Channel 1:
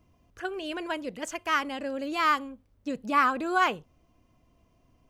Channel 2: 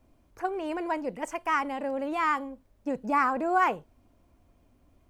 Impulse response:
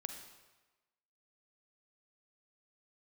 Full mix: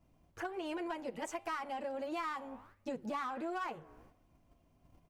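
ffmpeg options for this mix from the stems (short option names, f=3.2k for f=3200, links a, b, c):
-filter_complex "[0:a]equalizer=f=160:t=o:w=0.33:g=11,equalizer=f=250:t=o:w=0.33:g=-4,equalizer=f=800:t=o:w=0.33:g=10,flanger=delay=5.6:depth=9.7:regen=-90:speed=1.4:shape=sinusoidal,asoftclip=type=tanh:threshold=-28.5dB,volume=1dB[a];[1:a]adelay=9,volume=-2dB,asplit=2[b][c];[c]volume=-21dB[d];[2:a]atrim=start_sample=2205[e];[d][e]afir=irnorm=-1:irlink=0[f];[a][b][f]amix=inputs=3:normalize=0,agate=range=-7dB:threshold=-59dB:ratio=16:detection=peak,acompressor=threshold=-37dB:ratio=6"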